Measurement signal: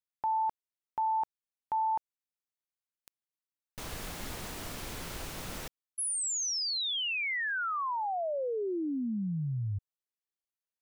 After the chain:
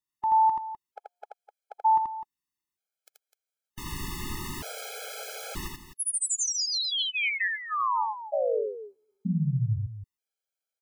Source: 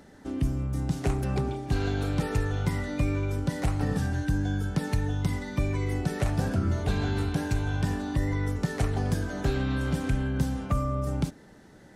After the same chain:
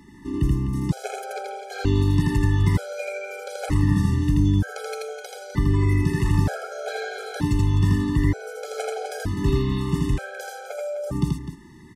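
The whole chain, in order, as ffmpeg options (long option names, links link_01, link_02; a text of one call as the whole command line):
ffmpeg -i in.wav -filter_complex "[0:a]asplit=2[link_01][link_02];[link_02]aecho=0:1:81.63|253.6:0.794|0.282[link_03];[link_01][link_03]amix=inputs=2:normalize=0,afftfilt=real='re*gt(sin(2*PI*0.54*pts/sr)*(1-2*mod(floor(b*sr/1024/430),2)),0)':imag='im*gt(sin(2*PI*0.54*pts/sr)*(1-2*mod(floor(b*sr/1024/430),2)),0)':win_size=1024:overlap=0.75,volume=4.5dB" out.wav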